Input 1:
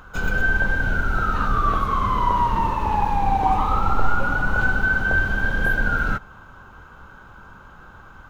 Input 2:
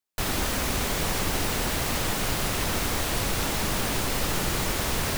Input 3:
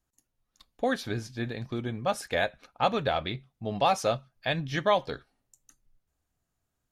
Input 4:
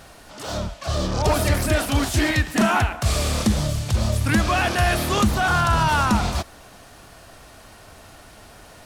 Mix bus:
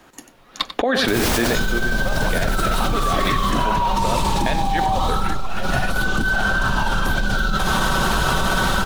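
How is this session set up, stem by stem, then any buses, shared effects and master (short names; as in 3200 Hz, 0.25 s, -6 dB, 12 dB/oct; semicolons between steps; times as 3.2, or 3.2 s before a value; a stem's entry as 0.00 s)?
-13.0 dB, 1.40 s, no send, no echo send, resonant high shelf 2800 Hz +8 dB, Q 3; comb 5.3 ms, depth 92%
3.19 s -12.5 dB -> 3.75 s -22.5 dB, 0.90 s, no send, no echo send, limiter -23 dBFS, peak gain reduction 9.5 dB
-5.5 dB, 0.00 s, no send, echo send -12 dB, three-band isolator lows -18 dB, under 210 Hz, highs -15 dB, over 3800 Hz; negative-ratio compressor -30 dBFS, ratio -1
-16.5 dB, 0.95 s, no send, no echo send, whisperiser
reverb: off
echo: echo 93 ms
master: fast leveller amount 100%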